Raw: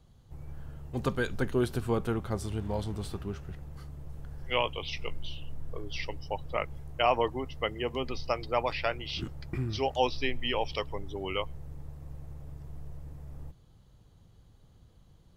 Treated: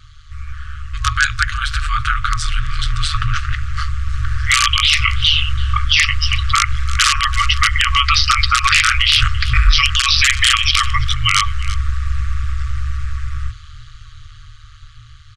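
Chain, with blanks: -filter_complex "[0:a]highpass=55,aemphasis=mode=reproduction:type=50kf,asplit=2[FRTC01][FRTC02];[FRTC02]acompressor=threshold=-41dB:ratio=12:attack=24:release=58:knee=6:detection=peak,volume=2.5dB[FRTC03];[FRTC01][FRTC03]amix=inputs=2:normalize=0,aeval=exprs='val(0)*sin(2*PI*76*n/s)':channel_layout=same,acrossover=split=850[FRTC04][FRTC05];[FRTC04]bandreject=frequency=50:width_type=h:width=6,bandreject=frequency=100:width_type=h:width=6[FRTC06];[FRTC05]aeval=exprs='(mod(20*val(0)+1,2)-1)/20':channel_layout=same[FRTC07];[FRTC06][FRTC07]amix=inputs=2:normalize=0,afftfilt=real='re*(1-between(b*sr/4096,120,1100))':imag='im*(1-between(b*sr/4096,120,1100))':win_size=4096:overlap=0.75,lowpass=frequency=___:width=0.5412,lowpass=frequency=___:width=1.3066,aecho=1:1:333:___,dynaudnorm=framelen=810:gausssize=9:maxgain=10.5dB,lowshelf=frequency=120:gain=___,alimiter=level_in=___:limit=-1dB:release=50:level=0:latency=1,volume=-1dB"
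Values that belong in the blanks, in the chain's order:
8300, 8300, 0.0708, -4.5, 23.5dB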